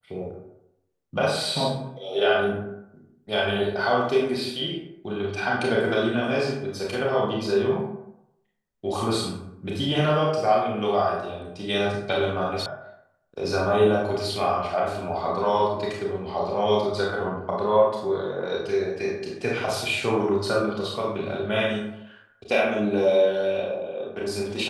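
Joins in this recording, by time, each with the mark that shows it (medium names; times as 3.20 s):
12.66 s: sound stops dead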